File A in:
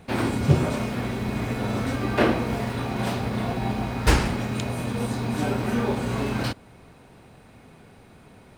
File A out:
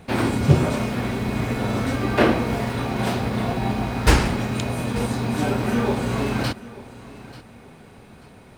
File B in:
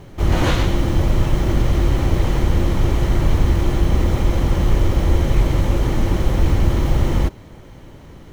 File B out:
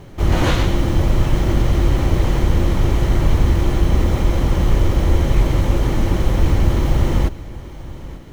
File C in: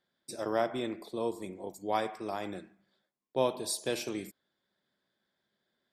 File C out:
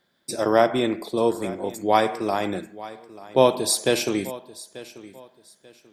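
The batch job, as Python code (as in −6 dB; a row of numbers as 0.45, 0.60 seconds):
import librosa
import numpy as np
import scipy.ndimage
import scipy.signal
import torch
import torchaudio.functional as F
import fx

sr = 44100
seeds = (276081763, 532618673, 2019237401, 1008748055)

y = fx.echo_feedback(x, sr, ms=888, feedback_pct=27, wet_db=-18)
y = librosa.util.normalize(y) * 10.0 ** (-2 / 20.0)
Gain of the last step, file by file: +3.0, +1.0, +12.0 decibels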